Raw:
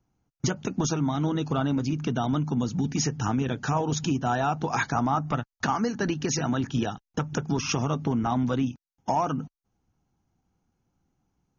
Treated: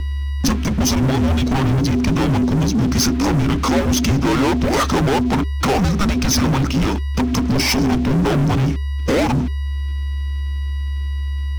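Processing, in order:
steady tone 470 Hz −37 dBFS
leveller curve on the samples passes 5
frequency shifter −400 Hz

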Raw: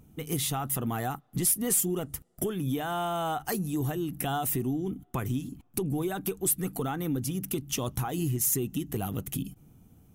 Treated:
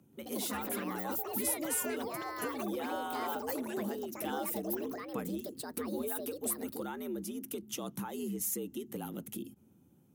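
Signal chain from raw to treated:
delay with pitch and tempo change per echo 131 ms, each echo +6 semitones, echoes 3
frequency shifter +73 Hz
level −8.5 dB

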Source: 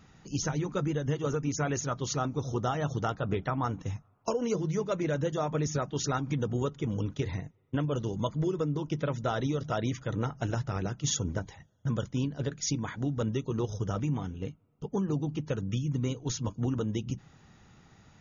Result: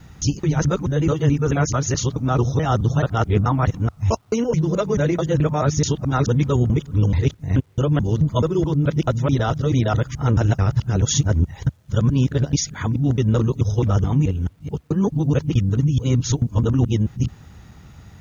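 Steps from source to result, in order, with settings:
reversed piece by piece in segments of 216 ms
parametric band 66 Hz +12.5 dB 1.7 octaves
bit-depth reduction 12 bits, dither none
level +8.5 dB

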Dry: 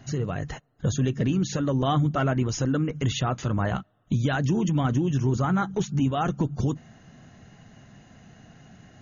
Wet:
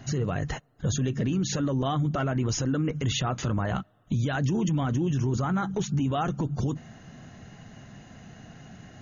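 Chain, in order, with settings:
brickwall limiter −23 dBFS, peak gain reduction 9.5 dB
level +3.5 dB

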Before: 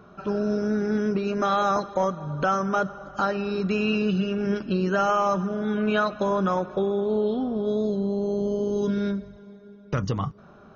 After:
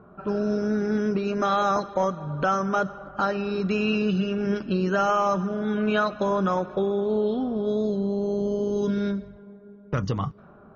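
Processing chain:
low-pass that shuts in the quiet parts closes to 1,200 Hz, open at −20 dBFS

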